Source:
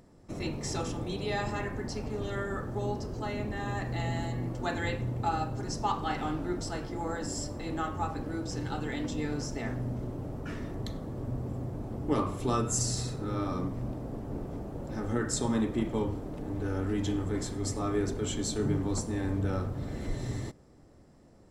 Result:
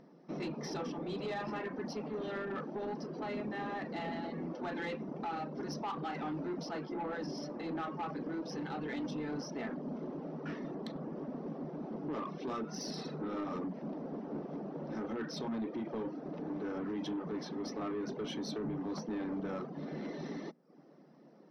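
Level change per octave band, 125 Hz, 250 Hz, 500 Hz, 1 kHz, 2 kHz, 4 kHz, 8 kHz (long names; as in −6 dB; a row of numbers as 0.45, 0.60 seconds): −13.5, −4.5, −4.5, −6.0, −5.5, −6.5, −16.5 decibels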